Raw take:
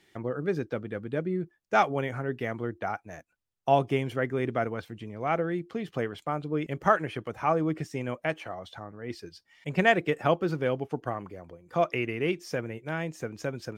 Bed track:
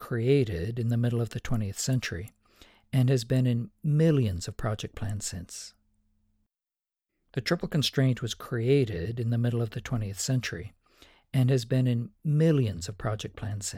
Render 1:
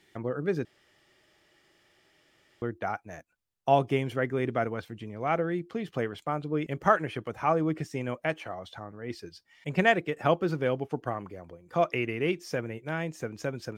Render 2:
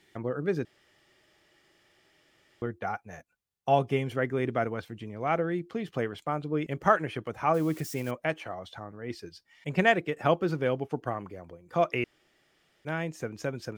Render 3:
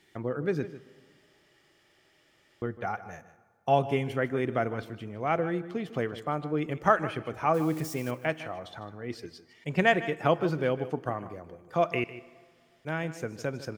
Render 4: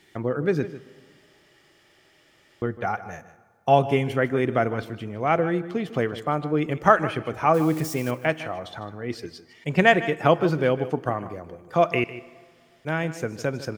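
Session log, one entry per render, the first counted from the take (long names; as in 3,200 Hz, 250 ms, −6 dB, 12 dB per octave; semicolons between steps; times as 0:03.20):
0:00.65–0:02.62: fill with room tone; 0:09.72–0:10.17: fade out equal-power, to −6.5 dB
0:02.66–0:04.11: notch comb filter 320 Hz; 0:07.54–0:08.11: spike at every zero crossing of −35.5 dBFS; 0:12.04–0:12.85: fill with room tone
single-tap delay 153 ms −15 dB; dense smooth reverb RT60 1.9 s, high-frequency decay 0.7×, DRR 18 dB
level +6 dB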